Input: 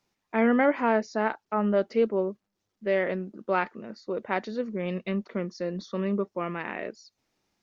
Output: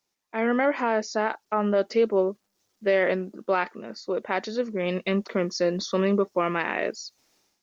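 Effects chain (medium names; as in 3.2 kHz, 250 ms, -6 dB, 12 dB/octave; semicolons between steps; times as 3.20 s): level rider gain up to 15 dB; peak limiter -6 dBFS, peak gain reduction 5 dB; tone controls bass -7 dB, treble +8 dB; trim -5.5 dB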